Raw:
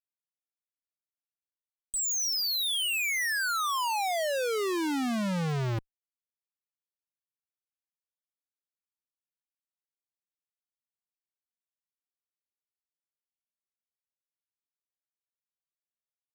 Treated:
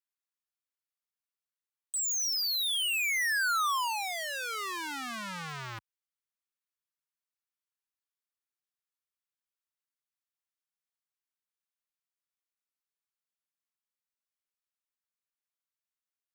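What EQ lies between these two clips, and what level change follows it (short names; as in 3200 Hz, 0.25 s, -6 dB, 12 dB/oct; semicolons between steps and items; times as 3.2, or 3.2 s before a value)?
HPF 69 Hz; resonant low shelf 760 Hz -13.5 dB, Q 1.5; -1.5 dB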